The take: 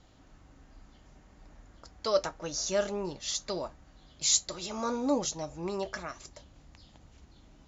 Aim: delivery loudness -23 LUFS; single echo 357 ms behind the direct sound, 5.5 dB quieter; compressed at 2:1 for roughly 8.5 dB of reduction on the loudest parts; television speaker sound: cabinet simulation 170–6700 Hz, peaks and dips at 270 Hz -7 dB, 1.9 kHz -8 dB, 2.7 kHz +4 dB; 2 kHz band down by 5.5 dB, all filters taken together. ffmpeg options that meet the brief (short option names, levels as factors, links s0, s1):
-af "equalizer=f=2000:t=o:g=-5.5,acompressor=threshold=0.0141:ratio=2,highpass=f=170:w=0.5412,highpass=f=170:w=1.3066,equalizer=f=270:t=q:w=4:g=-7,equalizer=f=1900:t=q:w=4:g=-8,equalizer=f=2700:t=q:w=4:g=4,lowpass=f=6700:w=0.5412,lowpass=f=6700:w=1.3066,aecho=1:1:357:0.531,volume=5.96"